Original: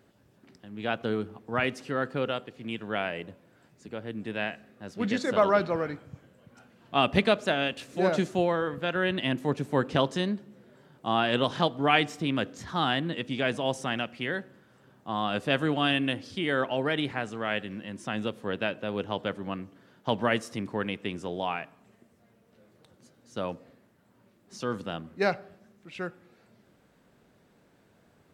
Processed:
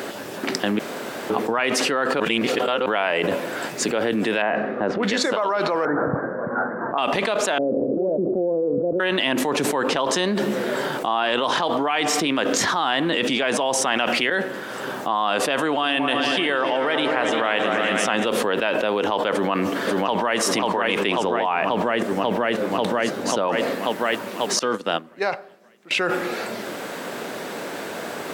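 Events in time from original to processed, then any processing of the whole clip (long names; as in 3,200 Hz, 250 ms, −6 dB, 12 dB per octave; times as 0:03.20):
0:00.79–0:01.30: fill with room tone
0:02.20–0:02.86: reverse
0:04.42–0:05.03: low-pass filter 1,300 Hz
0:05.85–0:06.98: Butterworth low-pass 1,700 Hz 72 dB per octave
0:07.58–0:09.00: Butterworth low-pass 550 Hz
0:14.30–0:15.10: fade in, from −13 dB
0:15.71–0:18.26: echo whose low-pass opens from repeat to repeat 115 ms, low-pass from 400 Hz, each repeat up 2 octaves, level −6 dB
0:19.33–0:20.40: delay throw 540 ms, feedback 65%, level −4.5 dB
0:21.24–0:23.48: spectral tilt −1.5 dB per octave
0:24.59–0:25.91: expander for the loud parts 2.5 to 1, over −41 dBFS
whole clip: dynamic equaliser 970 Hz, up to +6 dB, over −42 dBFS, Q 2.3; high-pass filter 360 Hz 12 dB per octave; envelope flattener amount 100%; level −5 dB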